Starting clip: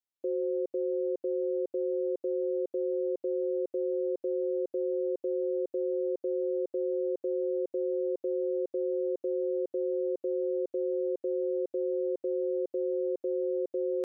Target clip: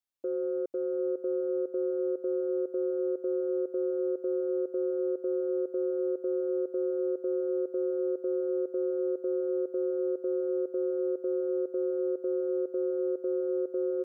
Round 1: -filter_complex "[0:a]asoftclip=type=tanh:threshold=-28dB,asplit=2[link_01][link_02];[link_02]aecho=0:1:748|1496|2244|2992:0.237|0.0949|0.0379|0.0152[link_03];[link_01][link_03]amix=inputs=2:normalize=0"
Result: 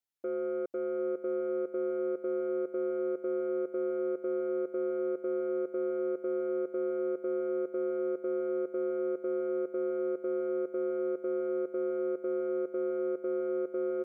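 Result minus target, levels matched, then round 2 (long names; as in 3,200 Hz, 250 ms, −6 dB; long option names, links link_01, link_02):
soft clipping: distortion +12 dB
-filter_complex "[0:a]asoftclip=type=tanh:threshold=-20.5dB,asplit=2[link_01][link_02];[link_02]aecho=0:1:748|1496|2244|2992:0.237|0.0949|0.0379|0.0152[link_03];[link_01][link_03]amix=inputs=2:normalize=0"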